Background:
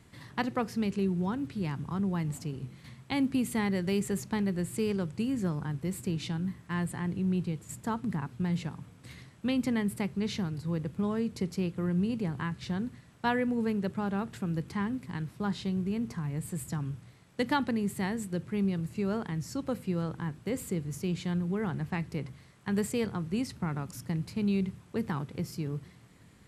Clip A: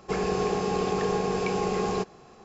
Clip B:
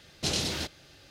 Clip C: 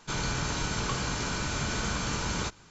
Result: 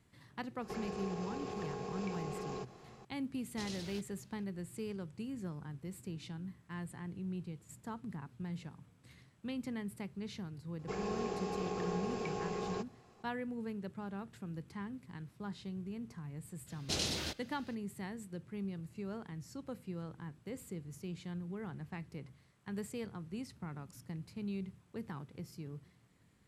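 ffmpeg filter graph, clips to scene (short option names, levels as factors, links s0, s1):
-filter_complex "[1:a]asplit=2[s0][s1];[2:a]asplit=2[s2][s3];[0:a]volume=0.266[s4];[s0]acompressor=threshold=0.0224:ratio=6:attack=3.2:release=140:knee=1:detection=peak,atrim=end=2.44,asetpts=PTS-STARTPTS,volume=0.501,afade=t=in:d=0.004:c=hsin,afade=t=out:st=2.436:d=0.004:c=hsin,adelay=610[s5];[s2]atrim=end=1.1,asetpts=PTS-STARTPTS,volume=0.133,afade=t=in:d=0.004:c=hsin,afade=t=out:st=1.096:d=0.004:c=hsin,adelay=3340[s6];[s1]atrim=end=2.44,asetpts=PTS-STARTPTS,volume=0.251,afade=t=in:d=0.004:c=hsin,afade=t=out:st=2.436:d=0.004:c=hsin,adelay=10790[s7];[s3]atrim=end=1.1,asetpts=PTS-STARTPTS,volume=0.501,afade=t=in:d=0.02,afade=t=out:st=1.08:d=0.02,adelay=16660[s8];[s4][s5][s6][s7][s8]amix=inputs=5:normalize=0"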